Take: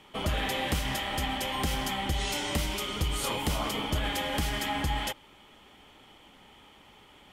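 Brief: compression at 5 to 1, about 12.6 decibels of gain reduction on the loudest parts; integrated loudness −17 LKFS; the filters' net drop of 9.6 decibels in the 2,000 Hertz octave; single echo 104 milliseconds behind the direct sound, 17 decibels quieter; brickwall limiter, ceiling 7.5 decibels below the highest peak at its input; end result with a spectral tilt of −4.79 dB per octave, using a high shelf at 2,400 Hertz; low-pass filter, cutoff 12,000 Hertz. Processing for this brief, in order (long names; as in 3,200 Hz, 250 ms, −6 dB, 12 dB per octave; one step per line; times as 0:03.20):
low-pass filter 12,000 Hz
parametric band 2,000 Hz −8 dB
high-shelf EQ 2,400 Hz −7.5 dB
downward compressor 5 to 1, threshold −40 dBFS
brickwall limiter −36 dBFS
single-tap delay 104 ms −17 dB
level +28.5 dB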